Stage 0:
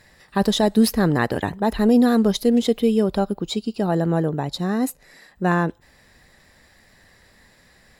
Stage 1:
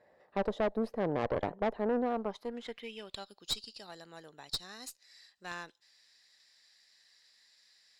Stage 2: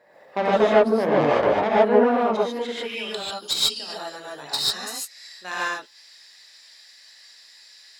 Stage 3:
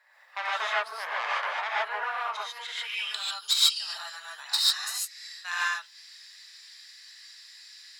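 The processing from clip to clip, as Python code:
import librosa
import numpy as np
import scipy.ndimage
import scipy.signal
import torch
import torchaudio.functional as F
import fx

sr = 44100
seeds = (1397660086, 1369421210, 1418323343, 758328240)

y1 = fx.rider(x, sr, range_db=4, speed_s=0.5)
y1 = fx.filter_sweep_bandpass(y1, sr, from_hz=570.0, to_hz=4800.0, start_s=2.03, end_s=3.35, q=2.3)
y1 = fx.tube_stage(y1, sr, drive_db=25.0, bias=0.7)
y2 = fx.highpass(y1, sr, hz=410.0, slope=6)
y2 = fx.rev_gated(y2, sr, seeds[0], gate_ms=170, shape='rising', drr_db=-7.0)
y2 = y2 * 10.0 ** (8.5 / 20.0)
y3 = scipy.signal.sosfilt(scipy.signal.butter(4, 1100.0, 'highpass', fs=sr, output='sos'), y2)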